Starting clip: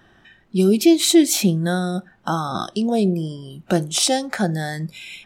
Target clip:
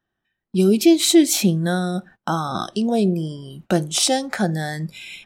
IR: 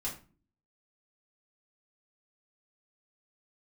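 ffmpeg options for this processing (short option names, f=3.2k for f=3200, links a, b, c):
-af "agate=range=-26dB:threshold=-42dB:ratio=16:detection=peak"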